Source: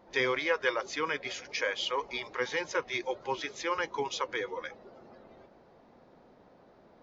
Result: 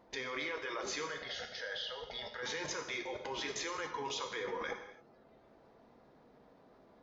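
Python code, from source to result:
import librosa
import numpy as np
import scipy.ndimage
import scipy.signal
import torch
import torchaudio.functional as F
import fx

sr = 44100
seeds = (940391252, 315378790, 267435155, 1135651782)

y = fx.level_steps(x, sr, step_db=24)
y = fx.fixed_phaser(y, sr, hz=1600.0, stages=8, at=(1.06, 2.43))
y = fx.rev_gated(y, sr, seeds[0], gate_ms=310, shape='falling', drr_db=4.0)
y = y * librosa.db_to_amplitude(8.0)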